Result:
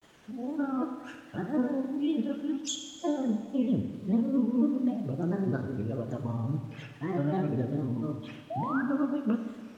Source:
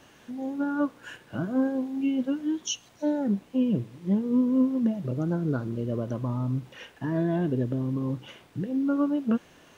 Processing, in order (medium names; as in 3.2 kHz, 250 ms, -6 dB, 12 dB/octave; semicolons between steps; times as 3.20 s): granulator, spray 16 ms, pitch spread up and down by 3 st; painted sound rise, 8.50–8.82 s, 620–1700 Hz -32 dBFS; Schroeder reverb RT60 1.6 s, combs from 31 ms, DRR 6.5 dB; trim -2.5 dB